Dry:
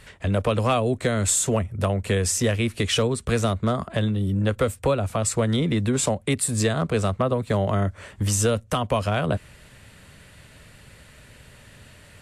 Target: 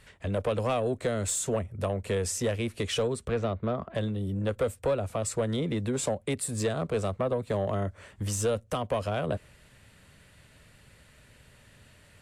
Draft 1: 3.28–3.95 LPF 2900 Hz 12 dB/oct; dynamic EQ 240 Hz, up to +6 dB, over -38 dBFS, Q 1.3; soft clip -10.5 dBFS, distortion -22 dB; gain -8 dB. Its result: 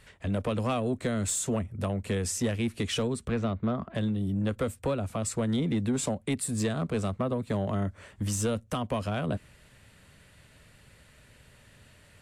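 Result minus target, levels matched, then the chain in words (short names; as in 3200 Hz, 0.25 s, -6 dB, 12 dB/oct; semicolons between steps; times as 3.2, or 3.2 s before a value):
250 Hz band +4.0 dB
3.28–3.95 LPF 2900 Hz 12 dB/oct; dynamic EQ 510 Hz, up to +6 dB, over -38 dBFS, Q 1.3; soft clip -10.5 dBFS, distortion -19 dB; gain -8 dB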